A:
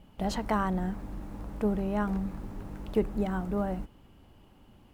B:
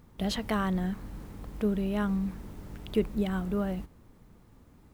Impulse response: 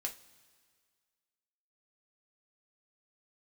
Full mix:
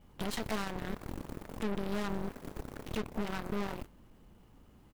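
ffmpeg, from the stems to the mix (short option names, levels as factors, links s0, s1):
-filter_complex "[0:a]acompressor=threshold=0.0141:ratio=4,volume=0.75[s0];[1:a]adynamicequalizer=threshold=0.01:dfrequency=180:dqfactor=0.97:tfrequency=180:tqfactor=0.97:attack=5:release=100:ratio=0.375:range=2.5:mode=cutabove:tftype=bell,acompressor=threshold=0.0355:ratio=6,aeval=exprs='(tanh(100*val(0)+0.6)-tanh(0.6))/100':c=same,adelay=9.1,volume=1.19,asplit=2[s1][s2];[s2]volume=0.631[s3];[2:a]atrim=start_sample=2205[s4];[s3][s4]afir=irnorm=-1:irlink=0[s5];[s0][s1][s5]amix=inputs=3:normalize=0,aeval=exprs='0.0668*(cos(1*acos(clip(val(0)/0.0668,-1,1)))-cos(1*PI/2))+0.00531*(cos(3*acos(clip(val(0)/0.0668,-1,1)))-cos(3*PI/2))+0.00596*(cos(5*acos(clip(val(0)/0.0668,-1,1)))-cos(5*PI/2))+0.0168*(cos(7*acos(clip(val(0)/0.0668,-1,1)))-cos(7*PI/2))':c=same"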